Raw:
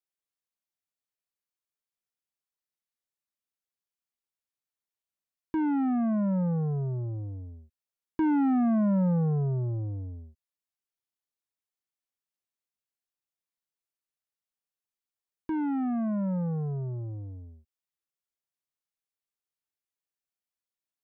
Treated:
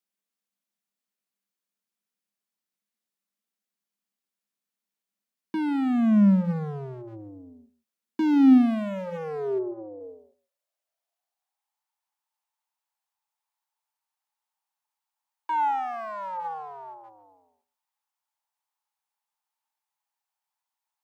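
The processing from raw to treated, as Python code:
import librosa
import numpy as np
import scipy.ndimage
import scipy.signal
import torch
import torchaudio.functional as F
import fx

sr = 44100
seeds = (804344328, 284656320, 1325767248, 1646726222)

p1 = fx.hum_notches(x, sr, base_hz=60, count=3)
p2 = 10.0 ** (-32.5 / 20.0) * (np.abs((p1 / 10.0 ** (-32.5 / 20.0) + 3.0) % 4.0 - 2.0) - 1.0)
p3 = p1 + F.gain(torch.from_numpy(p2), -4.0).numpy()
p4 = fx.low_shelf(p3, sr, hz=210.0, db=-9.5)
p5 = p4 + fx.echo_single(p4, sr, ms=141, db=-18.0, dry=0)
p6 = fx.filter_sweep_highpass(p5, sr, from_hz=200.0, to_hz=870.0, start_s=7.82, end_s=11.78, q=7.4)
p7 = fx.lowpass(p6, sr, hz=fx.line((9.58, 1200.0), (9.99, 1000.0)), slope=24, at=(9.58, 9.99), fade=0.02)
y = F.gain(torch.from_numpy(p7), -1.0).numpy()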